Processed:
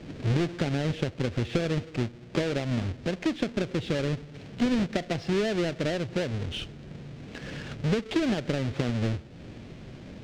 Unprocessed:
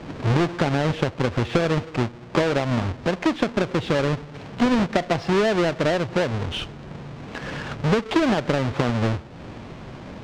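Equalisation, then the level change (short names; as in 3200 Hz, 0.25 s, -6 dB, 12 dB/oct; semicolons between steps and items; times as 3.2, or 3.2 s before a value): bell 1000 Hz -11 dB 1.2 oct; -4.5 dB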